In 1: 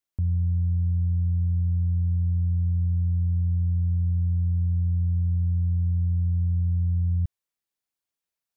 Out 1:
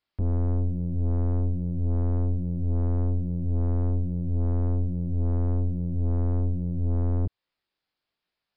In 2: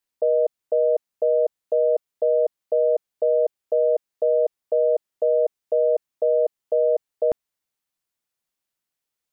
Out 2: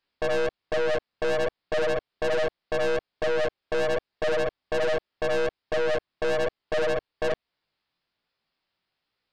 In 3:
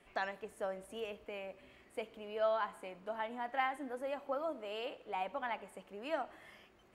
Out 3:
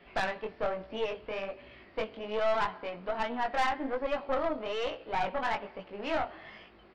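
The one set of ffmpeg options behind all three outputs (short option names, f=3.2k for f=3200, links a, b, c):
-filter_complex "[0:a]asplit=2[a][b];[b]acompressor=threshold=-31dB:ratio=6,volume=2.5dB[c];[a][c]amix=inputs=2:normalize=0,flanger=delay=17:depth=6.2:speed=1.2,aresample=11025,aresample=44100,aeval=exprs='(tanh(35.5*val(0)+0.65)-tanh(0.65))/35.5':c=same,volume=7.5dB"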